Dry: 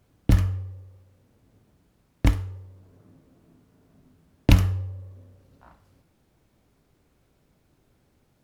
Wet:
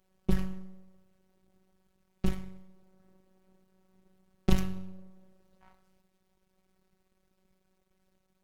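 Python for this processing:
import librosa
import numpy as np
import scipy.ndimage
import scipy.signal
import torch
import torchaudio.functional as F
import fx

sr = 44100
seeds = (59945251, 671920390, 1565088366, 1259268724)

y = fx.rev_schroeder(x, sr, rt60_s=0.73, comb_ms=28, drr_db=15.5)
y = np.maximum(y, 0.0)
y = fx.robotise(y, sr, hz=188.0)
y = F.gain(torch.from_numpy(y), -2.0).numpy()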